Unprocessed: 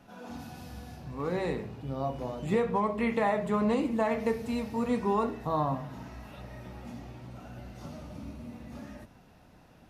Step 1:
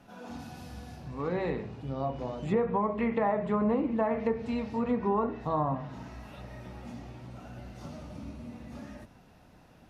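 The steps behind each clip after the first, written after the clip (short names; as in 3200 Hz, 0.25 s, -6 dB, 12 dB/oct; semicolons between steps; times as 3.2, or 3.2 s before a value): treble ducked by the level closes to 1500 Hz, closed at -23.5 dBFS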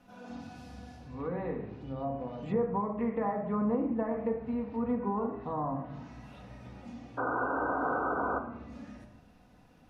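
painted sound noise, 7.17–8.39, 250–1600 Hz -27 dBFS; shoebox room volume 2600 m³, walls furnished, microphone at 1.9 m; treble ducked by the level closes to 1700 Hz, closed at -26 dBFS; gain -5.5 dB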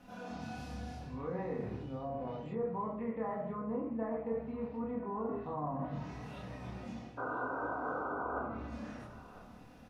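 reverse; compressor 4:1, threshold -40 dBFS, peak gain reduction 13 dB; reverse; doubler 27 ms -3 dB; echo 1 s -18 dB; gain +2 dB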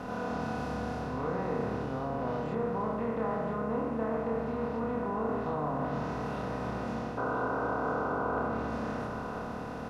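per-bin compression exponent 0.4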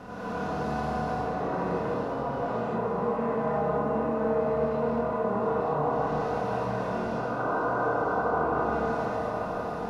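narrowing echo 0.158 s, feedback 84%, band-pass 650 Hz, level -3.5 dB; flange 0.76 Hz, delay 9 ms, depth 5.4 ms, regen -46%; non-linear reverb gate 0.26 s rising, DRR -5.5 dB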